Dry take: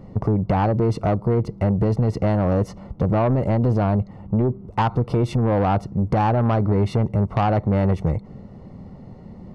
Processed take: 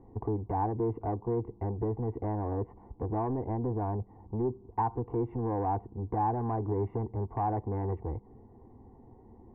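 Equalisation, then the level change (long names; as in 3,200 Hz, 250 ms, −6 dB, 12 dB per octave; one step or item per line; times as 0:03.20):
low-pass filter 1,300 Hz 24 dB per octave
low-shelf EQ 77 Hz −5 dB
phaser with its sweep stopped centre 870 Hz, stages 8
−6.5 dB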